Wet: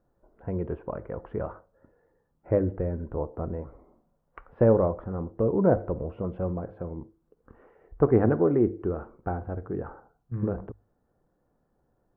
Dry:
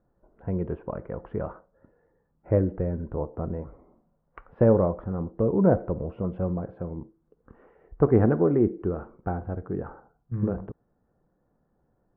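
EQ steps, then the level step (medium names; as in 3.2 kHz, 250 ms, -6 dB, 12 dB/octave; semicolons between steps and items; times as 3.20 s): peaking EQ 180 Hz -4 dB 0.77 oct; hum notches 50/100 Hz; 0.0 dB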